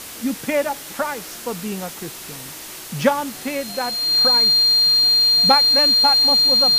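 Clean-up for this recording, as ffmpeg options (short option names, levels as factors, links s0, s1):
-af "bandreject=f=4200:w=30,afwtdn=0.02"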